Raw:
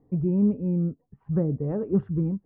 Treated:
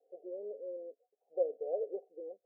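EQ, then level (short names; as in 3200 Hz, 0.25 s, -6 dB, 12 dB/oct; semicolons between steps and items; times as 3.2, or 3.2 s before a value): steep high-pass 450 Hz 48 dB/oct; rippled Chebyshev low-pass 750 Hz, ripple 6 dB; +3.0 dB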